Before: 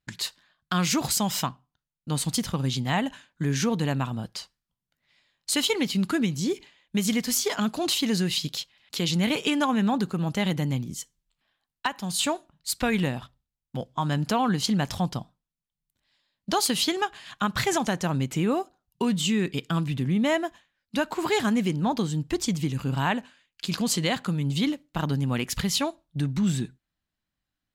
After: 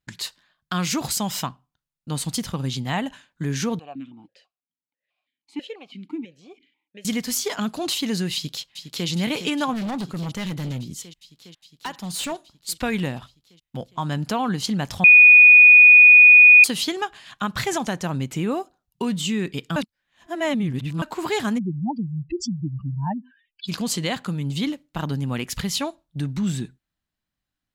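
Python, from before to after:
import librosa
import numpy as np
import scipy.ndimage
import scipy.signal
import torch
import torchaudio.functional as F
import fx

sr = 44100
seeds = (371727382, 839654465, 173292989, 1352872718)

y = fx.vowel_held(x, sr, hz=6.1, at=(3.79, 7.05))
y = fx.echo_throw(y, sr, start_s=8.34, length_s=0.74, ms=410, feedback_pct=80, wet_db=-10.0)
y = fx.clip_hard(y, sr, threshold_db=-25.0, at=(9.73, 12.32))
y = fx.spec_expand(y, sr, power=3.7, at=(21.57, 23.67), fade=0.02)
y = fx.edit(y, sr, fx.bleep(start_s=15.04, length_s=1.6, hz=2470.0, db=-6.0),
    fx.reverse_span(start_s=19.76, length_s=1.26), tone=tone)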